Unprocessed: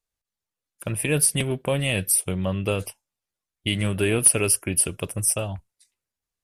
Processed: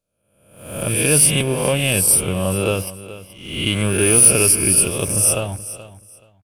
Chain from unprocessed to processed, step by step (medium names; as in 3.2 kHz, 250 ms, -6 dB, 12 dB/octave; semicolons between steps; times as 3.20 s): reverse spectral sustain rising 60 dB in 0.87 s; band-stop 1.9 kHz, Q 5.6; waveshaping leveller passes 1; on a send: feedback delay 427 ms, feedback 21%, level -15.5 dB